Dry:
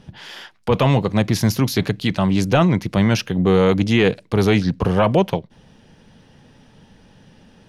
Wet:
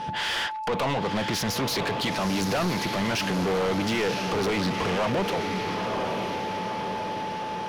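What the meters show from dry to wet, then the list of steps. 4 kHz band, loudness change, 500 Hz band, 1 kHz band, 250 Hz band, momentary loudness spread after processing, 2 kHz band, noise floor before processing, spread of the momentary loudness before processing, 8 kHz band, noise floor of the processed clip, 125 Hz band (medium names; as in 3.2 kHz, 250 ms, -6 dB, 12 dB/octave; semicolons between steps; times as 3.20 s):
-1.0 dB, -8.5 dB, -7.5 dB, -1.0 dB, -9.5 dB, 5 LU, -2.0 dB, -52 dBFS, 7 LU, -1.5 dB, -32 dBFS, -13.0 dB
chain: compression 2:1, threshold -24 dBFS, peak gain reduction 7.5 dB; peak limiter -19 dBFS, peak gain reduction 9 dB; echo that smears into a reverb 974 ms, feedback 52%, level -9 dB; whistle 870 Hz -44 dBFS; overdrive pedal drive 25 dB, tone 3.9 kHz, clips at -15.5 dBFS; trim -2.5 dB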